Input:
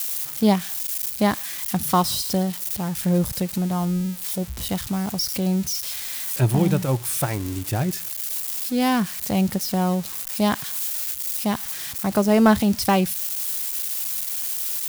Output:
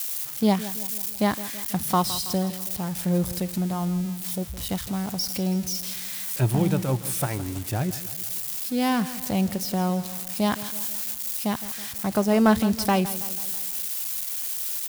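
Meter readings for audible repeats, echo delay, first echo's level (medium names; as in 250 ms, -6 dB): 4, 163 ms, -15.0 dB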